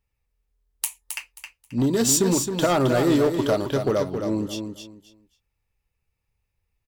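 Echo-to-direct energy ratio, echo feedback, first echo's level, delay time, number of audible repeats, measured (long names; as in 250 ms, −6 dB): −7.0 dB, 23%, −7.0 dB, 267 ms, 3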